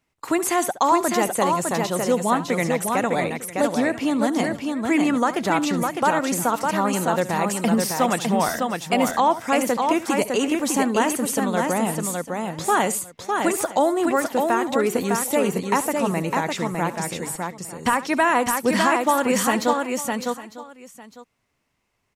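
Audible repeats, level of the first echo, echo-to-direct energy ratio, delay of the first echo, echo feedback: 5, -16.0 dB, -3.5 dB, 70 ms, no steady repeat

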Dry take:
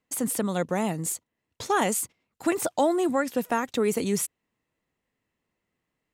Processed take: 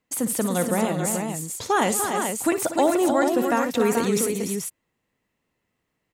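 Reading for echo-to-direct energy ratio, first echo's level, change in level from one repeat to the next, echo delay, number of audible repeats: -2.5 dB, -12.0 dB, no steady repeat, 57 ms, 5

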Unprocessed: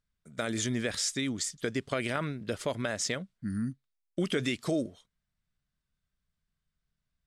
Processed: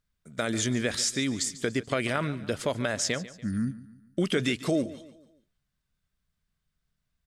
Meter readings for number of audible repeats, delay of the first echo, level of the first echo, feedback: 3, 0.144 s, -17.0 dB, 44%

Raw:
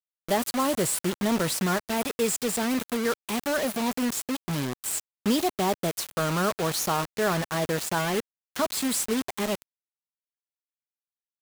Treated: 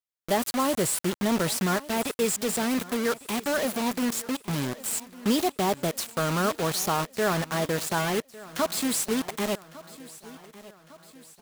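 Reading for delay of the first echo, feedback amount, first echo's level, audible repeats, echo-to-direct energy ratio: 1.154 s, 53%, -19.0 dB, 3, -17.5 dB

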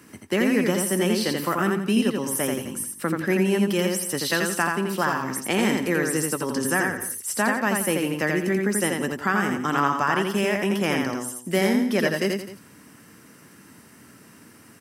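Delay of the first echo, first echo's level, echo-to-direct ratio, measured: 84 ms, -3.5 dB, -3.0 dB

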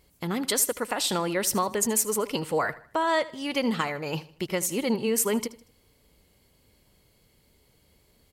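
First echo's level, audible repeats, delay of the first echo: -18.0 dB, 3, 78 ms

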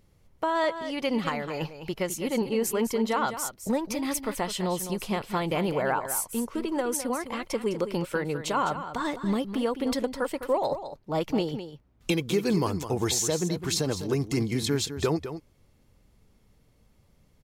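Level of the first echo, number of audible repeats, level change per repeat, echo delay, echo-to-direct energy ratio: -10.5 dB, 1, no steady repeat, 0.207 s, -10.5 dB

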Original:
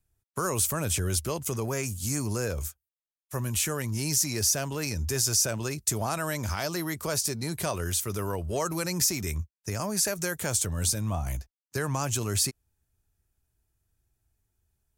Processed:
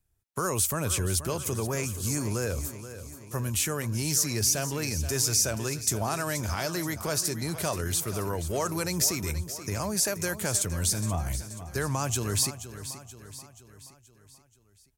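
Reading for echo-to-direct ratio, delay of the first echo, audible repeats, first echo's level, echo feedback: -11.0 dB, 0.479 s, 4, -12.5 dB, 52%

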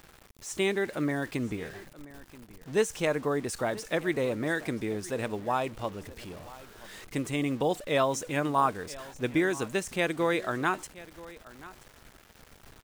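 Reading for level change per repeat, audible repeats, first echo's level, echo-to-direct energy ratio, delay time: no steady repeat, 1, -19.0 dB, -19.0 dB, 0.98 s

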